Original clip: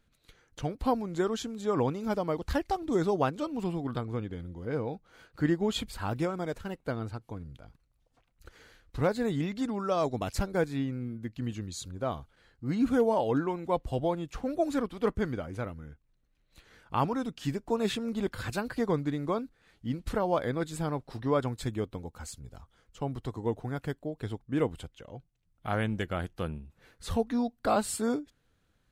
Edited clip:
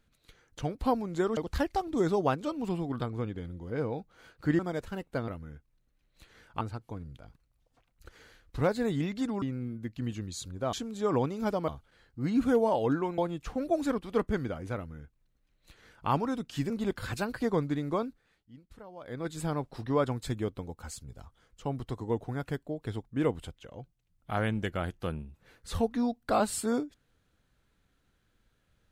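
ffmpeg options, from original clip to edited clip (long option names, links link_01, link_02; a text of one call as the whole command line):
ffmpeg -i in.wav -filter_complex "[0:a]asplit=12[link_01][link_02][link_03][link_04][link_05][link_06][link_07][link_08][link_09][link_10][link_11][link_12];[link_01]atrim=end=1.372[link_13];[link_02]atrim=start=2.318:end=5.542[link_14];[link_03]atrim=start=6.318:end=7.012[link_15];[link_04]atrim=start=15.638:end=16.972[link_16];[link_05]atrim=start=7.008:end=9.822[link_17];[link_06]atrim=start=10.818:end=12.132[link_18];[link_07]atrim=start=1.368:end=2.322[link_19];[link_08]atrim=start=12.128:end=13.632[link_20];[link_09]atrim=start=14.058:end=17.582[link_21];[link_10]atrim=start=18.058:end=19.82,asetpts=PTS-STARTPTS,afade=type=out:start_time=1.362:duration=0.4:silence=0.105925[link_22];[link_11]atrim=start=19.82:end=20.36,asetpts=PTS-STARTPTS,volume=-19.5dB[link_23];[link_12]atrim=start=20.36,asetpts=PTS-STARTPTS,afade=type=in:duration=0.4:silence=0.105925[link_24];[link_13][link_14]acrossfade=duration=0.004:curve1=hsin:curve2=hsin[link_25];[link_25][link_15]acrossfade=duration=0.004:curve1=hsin:curve2=hsin[link_26];[link_26][link_16]acrossfade=duration=0.004:curve1=hsin:curve2=hsin[link_27];[link_27][link_17]acrossfade=duration=0.004:curve1=hsin:curve2=hsin[link_28];[link_28][link_18]acrossfade=duration=0.004:curve1=hsin:curve2=hsin[link_29];[link_29][link_19]acrossfade=duration=0.004:curve1=hsin:curve2=hsin[link_30];[link_30][link_20]acrossfade=duration=0.004:curve1=hsin:curve2=hsin[link_31];[link_31][link_21]acrossfade=duration=0.004:curve1=hsin:curve2=hsin[link_32];[link_22][link_23][link_24]concat=n=3:v=0:a=1[link_33];[link_32][link_33]acrossfade=duration=0.004:curve1=hsin:curve2=hsin" out.wav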